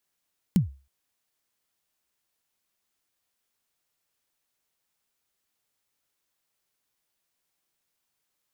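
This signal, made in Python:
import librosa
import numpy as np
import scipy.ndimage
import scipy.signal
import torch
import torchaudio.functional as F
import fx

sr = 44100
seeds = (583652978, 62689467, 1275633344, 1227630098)

y = fx.drum_kick(sr, seeds[0], length_s=0.32, level_db=-13.0, start_hz=210.0, end_hz=68.0, sweep_ms=126.0, decay_s=0.33, click=True)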